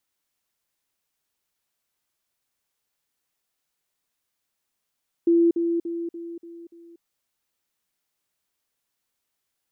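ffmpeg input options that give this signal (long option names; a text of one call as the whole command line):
ffmpeg -f lavfi -i "aevalsrc='pow(10,(-14.5-6*floor(t/0.29))/20)*sin(2*PI*338*t)*clip(min(mod(t,0.29),0.24-mod(t,0.29))/0.005,0,1)':duration=1.74:sample_rate=44100" out.wav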